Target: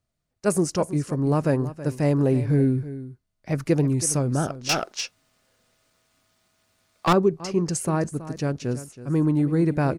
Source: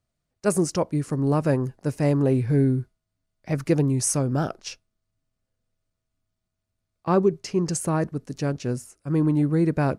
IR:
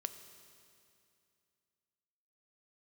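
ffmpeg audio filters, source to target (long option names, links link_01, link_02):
-filter_complex "[0:a]aecho=1:1:324:0.188,asettb=1/sr,asplit=3[link_01][link_02][link_03];[link_01]atrim=end=4.694[link_04];[link_02]atrim=start=4.69:end=7.13,asetpts=PTS-STARTPTS,afade=type=in:duration=0.004:curve=qsin,afade=type=out:start_time=2.436:duration=0.004:curve=qsin,asplit=2[link_05][link_06];[link_06]highpass=frequency=720:poles=1,volume=29dB,asoftclip=type=tanh:threshold=-11dB[link_07];[link_05][link_07]amix=inputs=2:normalize=0,lowpass=frequency=7800:poles=1,volume=-6dB[link_08];[link_03]atrim=start=7.126[link_09];[link_04][link_08]acrossfade=duration=0.004:curve1=hsin:curve2=qsin[link_10];[link_10][link_09]acrossfade=duration=0.004:curve1=qsin:curve2=hsin"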